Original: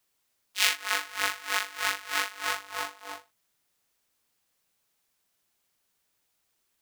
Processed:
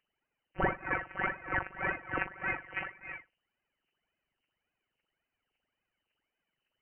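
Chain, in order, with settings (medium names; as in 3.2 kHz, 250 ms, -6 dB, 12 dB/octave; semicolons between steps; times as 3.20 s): phaser 1.8 Hz, delay 2.3 ms, feedback 71%; peaking EQ 1.9 kHz -4.5 dB 0.27 oct; frequency inversion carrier 3 kHz; trim -5 dB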